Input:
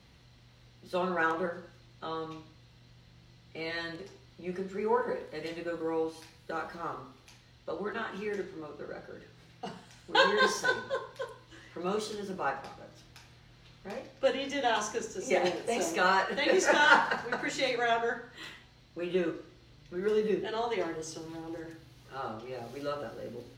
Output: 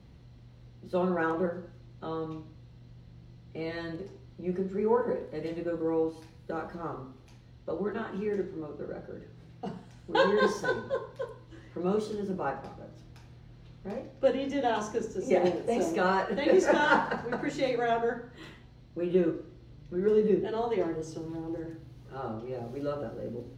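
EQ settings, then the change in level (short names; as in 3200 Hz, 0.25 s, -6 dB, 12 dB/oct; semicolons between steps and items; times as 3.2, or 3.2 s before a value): tilt shelf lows +7.5 dB, about 780 Hz; 0.0 dB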